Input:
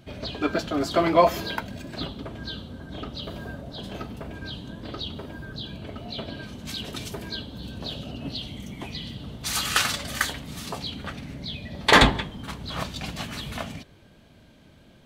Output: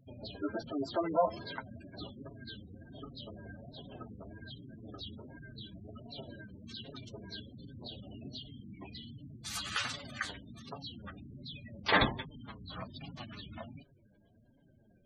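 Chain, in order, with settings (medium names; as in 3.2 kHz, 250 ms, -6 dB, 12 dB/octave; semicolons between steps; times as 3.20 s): harmony voices +5 st -12 dB; flange 1.3 Hz, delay 6.9 ms, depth 3.7 ms, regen -15%; spectral gate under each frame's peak -15 dB strong; trim -8 dB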